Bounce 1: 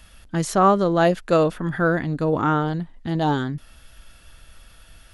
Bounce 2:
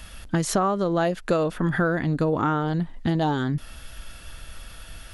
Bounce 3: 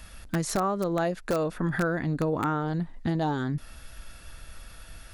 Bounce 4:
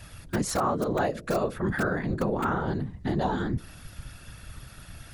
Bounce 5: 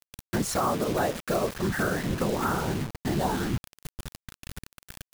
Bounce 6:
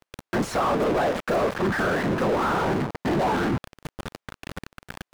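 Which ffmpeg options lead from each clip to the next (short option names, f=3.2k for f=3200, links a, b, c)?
-af "acompressor=threshold=-26dB:ratio=12,volume=7dB"
-filter_complex "[0:a]asplit=2[a][b];[b]aeval=exprs='(mod(4.47*val(0)+1,2)-1)/4.47':c=same,volume=-3.5dB[c];[a][c]amix=inputs=2:normalize=0,equalizer=f=3.1k:w=5.3:g=-6.5,volume=-8.5dB"
-af "bandreject=f=60:t=h:w=6,bandreject=f=120:t=h:w=6,bandreject=f=180:t=h:w=6,bandreject=f=240:t=h:w=6,bandreject=f=300:t=h:w=6,bandreject=f=360:t=h:w=6,bandreject=f=420:t=h:w=6,bandreject=f=480:t=h:w=6,bandreject=f=540:t=h:w=6,aeval=exprs='val(0)+0.002*(sin(2*PI*60*n/s)+sin(2*PI*2*60*n/s)/2+sin(2*PI*3*60*n/s)/3+sin(2*PI*4*60*n/s)/4+sin(2*PI*5*60*n/s)/5)':c=same,afftfilt=real='hypot(re,im)*cos(2*PI*random(0))':imag='hypot(re,im)*sin(2*PI*random(1))':win_size=512:overlap=0.75,volume=6.5dB"
-af "acrusher=bits=5:mix=0:aa=0.000001"
-filter_complex "[0:a]asplit=2[a][b];[b]highpass=f=720:p=1,volume=27dB,asoftclip=type=tanh:threshold=-14dB[c];[a][c]amix=inputs=2:normalize=0,lowpass=f=1k:p=1,volume=-6dB"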